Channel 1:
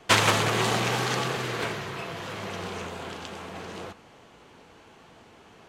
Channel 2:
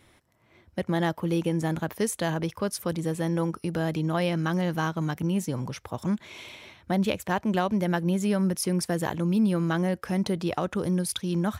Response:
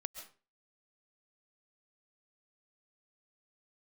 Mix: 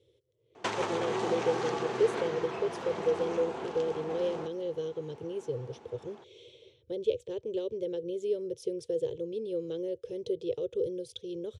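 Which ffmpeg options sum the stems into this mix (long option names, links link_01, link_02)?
-filter_complex "[0:a]equalizer=frequency=550:width=0.36:gain=8,acompressor=threshold=-22dB:ratio=5,adelay=550,volume=-10.5dB[link_01];[1:a]firequalizer=gain_entry='entry(130,0);entry(190,-26);entry(480,12);entry(710,-26);entry(1700,-25);entry(3300,-2);entry(4700,-12)':delay=0.05:min_phase=1,volume=-6dB[link_02];[link_01][link_02]amix=inputs=2:normalize=0,highpass=100,equalizer=frequency=230:width_type=q:width=4:gain=4,equalizer=frequency=380:width_type=q:width=4:gain=7,equalizer=frequency=860:width_type=q:width=4:gain=5,equalizer=frequency=5900:width_type=q:width=4:gain=3,lowpass=frequency=8700:width=0.5412,lowpass=frequency=8700:width=1.3066"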